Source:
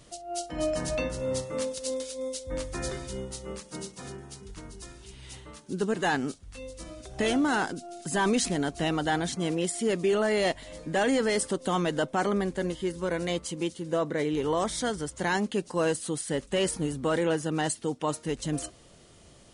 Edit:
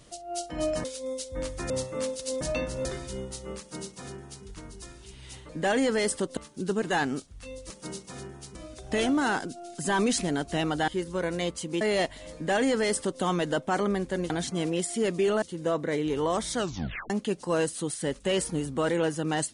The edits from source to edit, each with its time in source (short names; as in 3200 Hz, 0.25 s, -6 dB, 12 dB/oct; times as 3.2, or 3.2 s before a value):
0.84–1.28 swap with 1.99–2.85
3.59–4.44 copy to 6.82
9.15–10.27 swap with 12.76–13.69
10.8–11.68 copy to 5.49
14.84 tape stop 0.53 s